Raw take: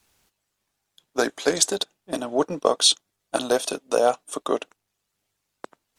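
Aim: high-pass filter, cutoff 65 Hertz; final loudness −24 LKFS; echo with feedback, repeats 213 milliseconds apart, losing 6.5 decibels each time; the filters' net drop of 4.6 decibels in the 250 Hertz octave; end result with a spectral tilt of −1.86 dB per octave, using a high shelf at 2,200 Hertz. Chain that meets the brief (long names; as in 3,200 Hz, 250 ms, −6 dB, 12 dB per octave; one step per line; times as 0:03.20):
high-pass filter 65 Hz
parametric band 250 Hz −6 dB
high-shelf EQ 2,200 Hz −6.5 dB
repeating echo 213 ms, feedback 47%, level −6.5 dB
level +2 dB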